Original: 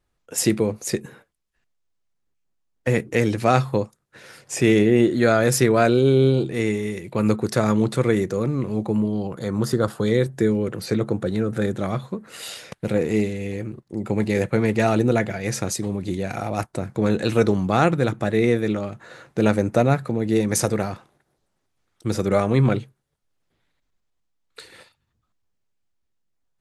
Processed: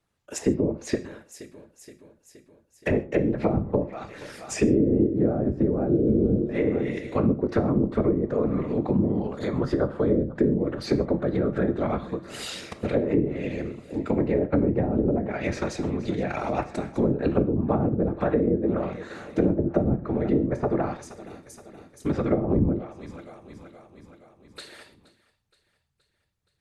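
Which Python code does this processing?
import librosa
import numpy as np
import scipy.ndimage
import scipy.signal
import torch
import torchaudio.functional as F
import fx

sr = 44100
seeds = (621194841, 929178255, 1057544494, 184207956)

p1 = fx.whisperise(x, sr, seeds[0])
p2 = fx.low_shelf(p1, sr, hz=93.0, db=-11.0)
p3 = p2 + fx.echo_feedback(p2, sr, ms=472, feedback_pct=59, wet_db=-20.5, dry=0)
p4 = fx.env_lowpass_down(p3, sr, base_hz=320.0, full_db=-16.0)
y = fx.rev_gated(p4, sr, seeds[1], gate_ms=170, shape='falling', drr_db=10.0)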